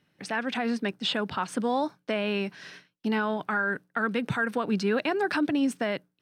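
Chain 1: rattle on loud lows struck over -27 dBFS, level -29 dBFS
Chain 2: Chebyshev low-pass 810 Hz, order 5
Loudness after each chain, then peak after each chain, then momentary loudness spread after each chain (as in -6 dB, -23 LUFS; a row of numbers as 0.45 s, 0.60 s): -28.5 LUFS, -31.0 LUFS; -16.0 dBFS, -17.5 dBFS; 5 LU, 8 LU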